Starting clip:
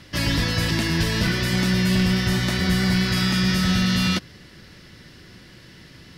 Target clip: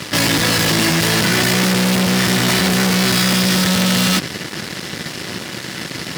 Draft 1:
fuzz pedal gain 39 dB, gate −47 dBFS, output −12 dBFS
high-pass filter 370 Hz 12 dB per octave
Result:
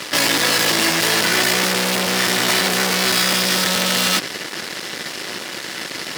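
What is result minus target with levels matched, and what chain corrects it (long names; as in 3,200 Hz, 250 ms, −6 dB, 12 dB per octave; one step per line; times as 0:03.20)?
125 Hz band −9.5 dB
fuzz pedal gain 39 dB, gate −47 dBFS, output −12 dBFS
high-pass filter 150 Hz 12 dB per octave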